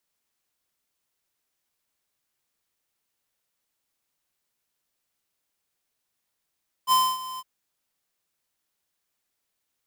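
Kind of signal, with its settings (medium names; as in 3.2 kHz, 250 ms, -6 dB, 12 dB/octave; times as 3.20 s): ADSR square 1.03 kHz, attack 50 ms, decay 255 ms, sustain -17 dB, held 0.52 s, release 40 ms -18 dBFS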